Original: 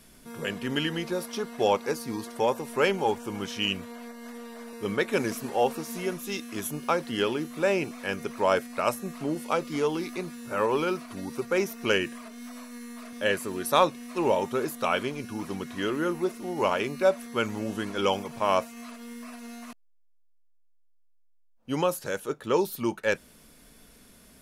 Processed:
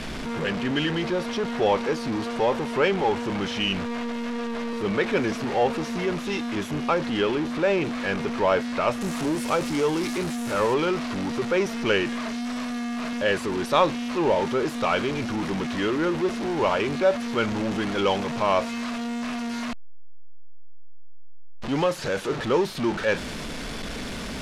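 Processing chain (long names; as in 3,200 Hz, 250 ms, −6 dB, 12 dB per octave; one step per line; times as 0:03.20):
converter with a step at zero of −25 dBFS
low-pass filter 3,800 Hz 12 dB per octave, from 0:09.01 8,900 Hz, from 0:10.74 4,700 Hz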